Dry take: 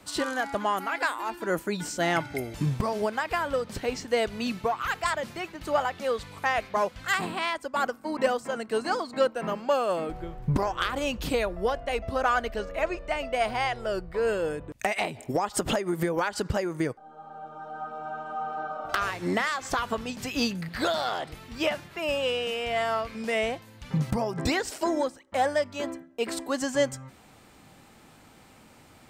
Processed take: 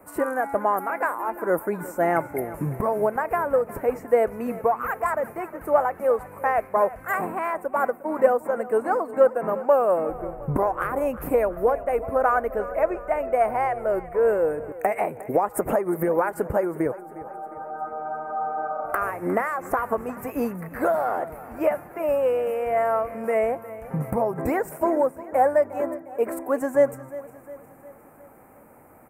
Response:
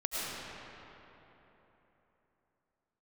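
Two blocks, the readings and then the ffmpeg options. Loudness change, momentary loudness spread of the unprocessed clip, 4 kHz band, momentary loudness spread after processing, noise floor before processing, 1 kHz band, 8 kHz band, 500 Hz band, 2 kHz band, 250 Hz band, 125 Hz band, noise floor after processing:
+4.5 dB, 7 LU, under -20 dB, 9 LU, -54 dBFS, +4.5 dB, -6.5 dB, +7.0 dB, -1.5 dB, +2.0 dB, -1.5 dB, -47 dBFS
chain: -af "firequalizer=gain_entry='entry(110,0);entry(500,10);entry(2300,-3);entry(3400,-30);entry(11000,10)':delay=0.05:min_phase=1,aecho=1:1:356|712|1068|1424|1780:0.141|0.0763|0.0412|0.0222|0.012,volume=-2.5dB"

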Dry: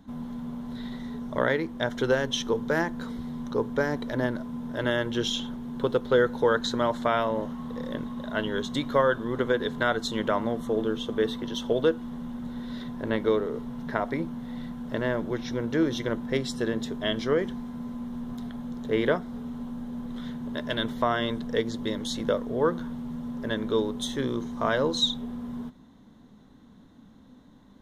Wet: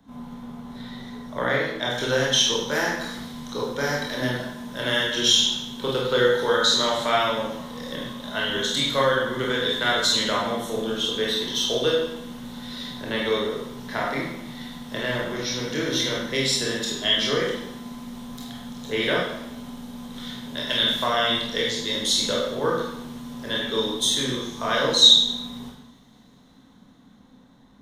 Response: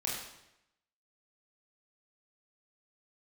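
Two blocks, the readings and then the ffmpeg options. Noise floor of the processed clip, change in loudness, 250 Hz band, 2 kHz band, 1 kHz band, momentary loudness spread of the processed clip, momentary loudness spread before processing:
-52 dBFS, +6.0 dB, -1.5 dB, +6.0 dB, +3.5 dB, 18 LU, 11 LU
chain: -filter_complex "[0:a]lowshelf=f=500:g=-5.5,acrossover=split=230|400|2700[a][b][c][d];[d]dynaudnorm=f=180:g=21:m=11.5dB[e];[a][b][c][e]amix=inputs=4:normalize=0[f];[1:a]atrim=start_sample=2205[g];[f][g]afir=irnorm=-1:irlink=0"

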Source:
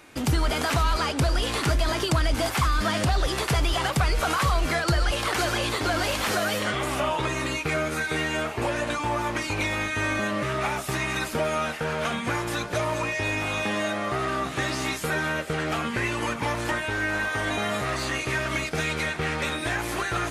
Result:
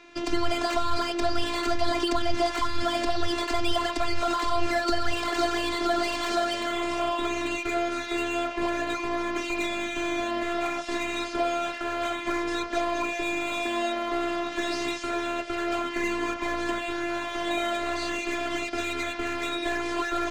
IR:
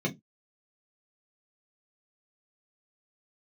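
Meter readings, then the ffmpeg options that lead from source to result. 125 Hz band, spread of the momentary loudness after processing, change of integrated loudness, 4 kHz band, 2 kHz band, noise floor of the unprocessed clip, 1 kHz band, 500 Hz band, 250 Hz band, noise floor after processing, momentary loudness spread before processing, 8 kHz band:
-16.0 dB, 3 LU, -2.0 dB, -2.0 dB, -4.5 dB, -33 dBFS, -0.5 dB, 0.0 dB, +1.0 dB, -35 dBFS, 4 LU, -6.5 dB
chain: -filter_complex "[0:a]lowpass=f=5.9k:w=0.5412,lowpass=f=5.9k:w=1.3066,equalizer=f=69:t=o:w=0.34:g=-4.5,bandreject=f=50:t=h:w=6,bandreject=f=100:t=h:w=6,bandreject=f=150:t=h:w=6,afftfilt=real='hypot(re,im)*cos(PI*b)':imag='0':win_size=512:overlap=0.75,acrossover=split=280|920|4500[a][b][c][d];[c]asoftclip=type=hard:threshold=-32.5dB[e];[a][b][e][d]amix=inputs=4:normalize=0,volume=3.5dB"

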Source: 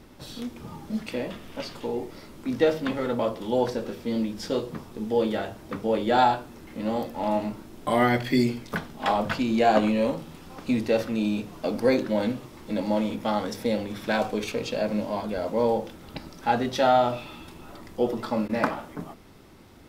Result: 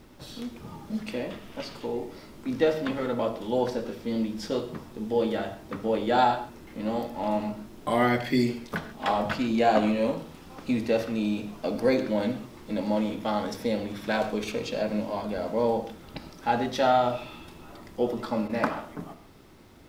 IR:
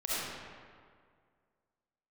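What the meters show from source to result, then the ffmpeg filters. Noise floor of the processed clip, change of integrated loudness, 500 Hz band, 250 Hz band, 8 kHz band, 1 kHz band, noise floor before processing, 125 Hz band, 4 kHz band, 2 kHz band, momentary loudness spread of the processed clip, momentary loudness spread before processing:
-48 dBFS, -1.5 dB, -1.5 dB, -1.5 dB, -2.5 dB, -1.5 dB, -47 dBFS, -2.0 dB, -2.0 dB, -1.5 dB, 15 LU, 15 LU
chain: -filter_complex "[0:a]acrusher=bits=10:mix=0:aa=0.000001,asplit=2[a][b];[1:a]atrim=start_sample=2205,afade=t=out:st=0.2:d=0.01,atrim=end_sample=9261,lowpass=8.5k[c];[b][c]afir=irnorm=-1:irlink=0,volume=-14.5dB[d];[a][d]amix=inputs=2:normalize=0,volume=-3dB"

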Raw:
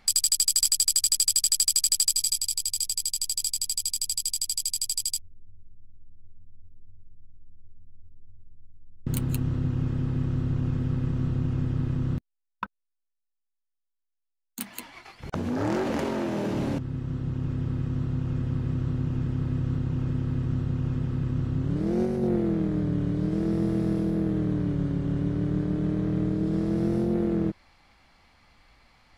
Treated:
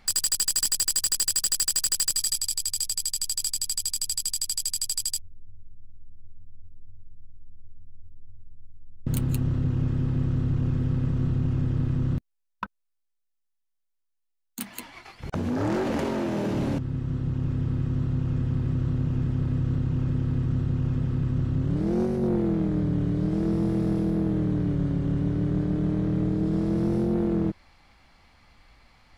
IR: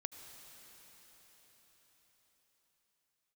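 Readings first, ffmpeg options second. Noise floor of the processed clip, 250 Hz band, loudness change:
-76 dBFS, +1.0 dB, +0.5 dB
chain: -af "lowshelf=f=140:g=3.5,aeval=exprs='0.335*sin(PI/2*1.78*val(0)/0.335)':c=same,volume=-8dB"

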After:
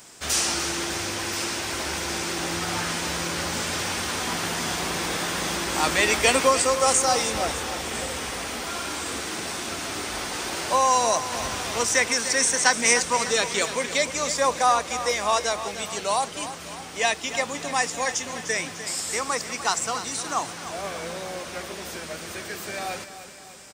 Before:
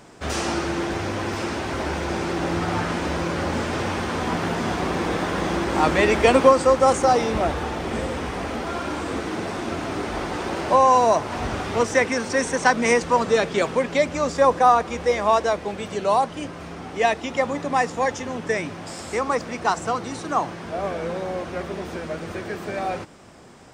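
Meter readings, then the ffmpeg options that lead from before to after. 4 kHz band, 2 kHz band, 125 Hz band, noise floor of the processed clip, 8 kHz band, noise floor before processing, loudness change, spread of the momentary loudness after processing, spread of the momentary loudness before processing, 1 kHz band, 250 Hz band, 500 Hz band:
+6.5 dB, +0.5 dB, -8.0 dB, -39 dBFS, +11.0 dB, -37 dBFS, -2.0 dB, 13 LU, 12 LU, -4.0 dB, -8.0 dB, -6.5 dB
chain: -af "aecho=1:1:300|600|900|1200|1500|1800:0.251|0.138|0.076|0.0418|0.023|0.0126,crystalizer=i=9.5:c=0,volume=-9dB"

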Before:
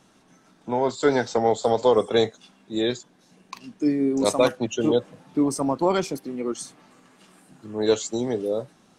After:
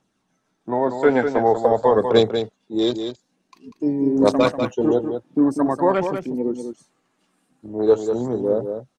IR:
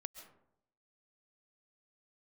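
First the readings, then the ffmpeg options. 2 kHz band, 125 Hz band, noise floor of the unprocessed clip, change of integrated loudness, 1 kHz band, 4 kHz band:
+2.5 dB, +3.0 dB, -59 dBFS, +3.5 dB, +4.0 dB, 0.0 dB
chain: -af "afwtdn=0.0224,aphaser=in_gain=1:out_gain=1:delay=4.3:decay=0.34:speed=0.47:type=triangular,aecho=1:1:193:0.422,volume=2.5dB"

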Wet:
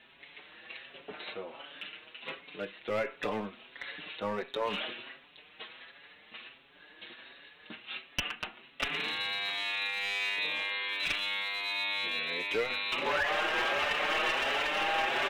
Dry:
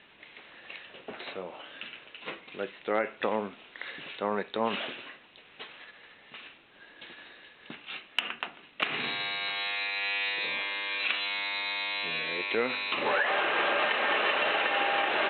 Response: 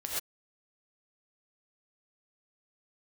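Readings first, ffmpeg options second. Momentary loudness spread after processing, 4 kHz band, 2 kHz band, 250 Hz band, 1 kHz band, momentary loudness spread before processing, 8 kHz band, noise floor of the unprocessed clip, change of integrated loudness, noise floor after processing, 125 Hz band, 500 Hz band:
19 LU, -1.0 dB, -2.5 dB, -4.0 dB, -3.5 dB, 21 LU, n/a, -56 dBFS, -2.5 dB, -58 dBFS, 0.0 dB, -3.5 dB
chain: -filter_complex "[0:a]highshelf=f=3.5k:g=5.5,aeval=exprs='clip(val(0),-1,0.0596)':c=same,asplit=2[a][b];[b]adelay=5.8,afreqshift=1.4[c];[a][c]amix=inputs=2:normalize=1"

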